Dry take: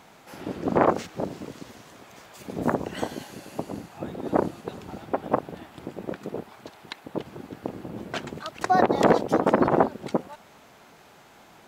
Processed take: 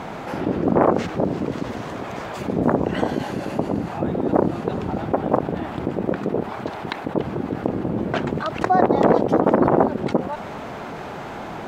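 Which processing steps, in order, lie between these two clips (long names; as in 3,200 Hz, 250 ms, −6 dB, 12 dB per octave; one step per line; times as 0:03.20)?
one scale factor per block 7 bits
low-pass filter 1,100 Hz 6 dB per octave
envelope flattener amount 50%
level +2.5 dB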